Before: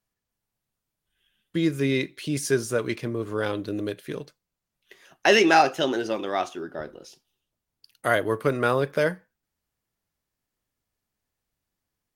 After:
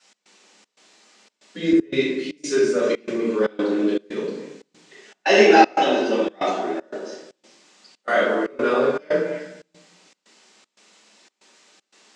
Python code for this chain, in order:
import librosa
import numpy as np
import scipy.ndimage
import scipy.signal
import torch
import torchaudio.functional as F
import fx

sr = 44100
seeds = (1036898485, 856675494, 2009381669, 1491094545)

p1 = fx.spec_quant(x, sr, step_db=15)
p2 = fx.rider(p1, sr, range_db=4, speed_s=0.5)
p3 = p1 + F.gain(torch.from_numpy(p2), -0.5).numpy()
p4 = fx.quant_dither(p3, sr, seeds[0], bits=8, dither='triangular')
p5 = scipy.signal.sosfilt(scipy.signal.cheby1(4, 1.0, [200.0, 7600.0], 'bandpass', fs=sr, output='sos'), p4)
p6 = p5 + fx.echo_stepped(p5, sr, ms=100, hz=320.0, octaves=1.4, feedback_pct=70, wet_db=-5, dry=0)
p7 = fx.room_shoebox(p6, sr, seeds[1], volume_m3=280.0, walls='mixed', distance_m=7.3)
p8 = fx.step_gate(p7, sr, bpm=117, pattern='x.xxx.xxxx.xx', floor_db=-24.0, edge_ms=4.5)
p9 = fx.band_widen(p8, sr, depth_pct=40, at=(1.73, 2.82))
y = F.gain(torch.from_numpy(p9), -17.5).numpy()